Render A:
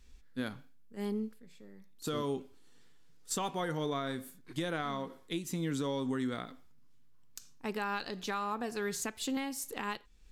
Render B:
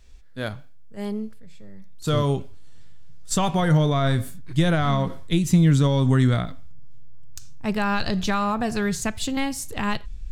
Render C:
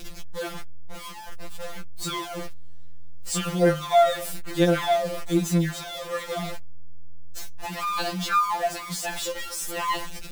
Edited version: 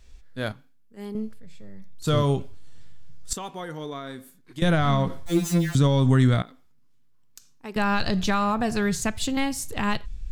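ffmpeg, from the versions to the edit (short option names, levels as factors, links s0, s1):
-filter_complex "[0:a]asplit=3[s0][s1][s2];[1:a]asplit=5[s3][s4][s5][s6][s7];[s3]atrim=end=0.522[s8];[s0]atrim=start=0.518:end=1.152[s9];[s4]atrim=start=1.148:end=3.332[s10];[s1]atrim=start=3.328:end=4.622[s11];[s5]atrim=start=4.618:end=5.262[s12];[2:a]atrim=start=5.258:end=5.752[s13];[s6]atrim=start=5.748:end=6.422[s14];[s2]atrim=start=6.418:end=7.762[s15];[s7]atrim=start=7.758[s16];[s8][s9]acrossfade=d=0.004:c1=hsin:c2=hsin[s17];[s17][s10]acrossfade=d=0.004:c1=hsin:c2=hsin[s18];[s18][s11]acrossfade=d=0.004:c1=hsin:c2=hsin[s19];[s19][s12]acrossfade=d=0.004:c1=hsin:c2=hsin[s20];[s20][s13]acrossfade=d=0.004:c1=hsin:c2=hsin[s21];[s21][s14]acrossfade=d=0.004:c1=hsin:c2=hsin[s22];[s22][s15]acrossfade=d=0.004:c1=hsin:c2=hsin[s23];[s23][s16]acrossfade=d=0.004:c1=hsin:c2=hsin"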